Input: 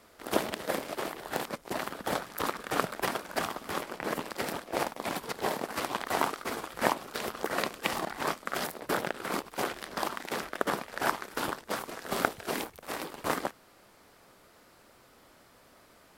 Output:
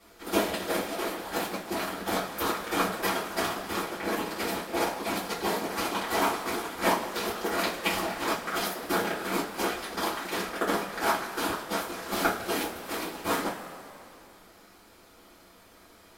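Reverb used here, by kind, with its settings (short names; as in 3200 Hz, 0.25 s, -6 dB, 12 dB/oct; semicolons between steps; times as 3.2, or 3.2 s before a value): two-slope reverb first 0.25 s, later 2.6 s, from -19 dB, DRR -9.5 dB; gain -6.5 dB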